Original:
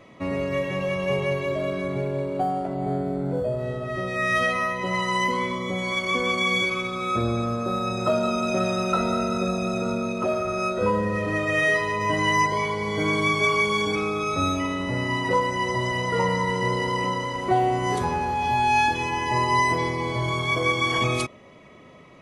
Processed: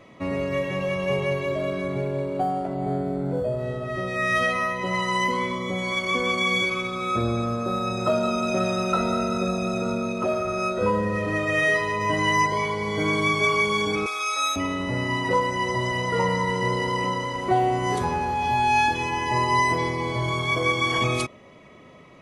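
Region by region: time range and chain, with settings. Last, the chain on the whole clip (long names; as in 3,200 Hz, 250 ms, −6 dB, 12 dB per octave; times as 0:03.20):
0:14.06–0:14.56: high-pass filter 760 Hz + spectral tilt +3 dB per octave
whole clip: no processing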